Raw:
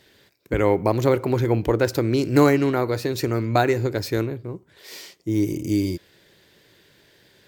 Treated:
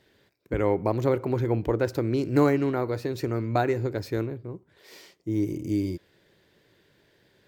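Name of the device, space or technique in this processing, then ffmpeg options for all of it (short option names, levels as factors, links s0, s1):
behind a face mask: -af "highshelf=f=2400:g=-8,volume=0.596"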